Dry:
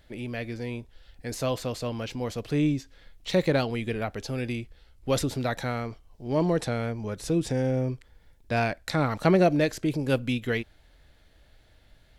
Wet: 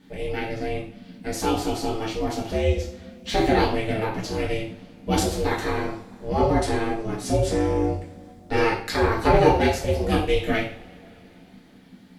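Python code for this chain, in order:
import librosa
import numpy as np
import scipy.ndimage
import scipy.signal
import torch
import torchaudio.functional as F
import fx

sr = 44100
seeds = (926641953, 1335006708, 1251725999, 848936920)

y = x * np.sin(2.0 * np.pi * 220.0 * np.arange(len(x)) / sr)
y = fx.rev_double_slope(y, sr, seeds[0], early_s=0.44, late_s=3.8, knee_db=-28, drr_db=-5.5)
y = y * librosa.db_to_amplitude(1.0)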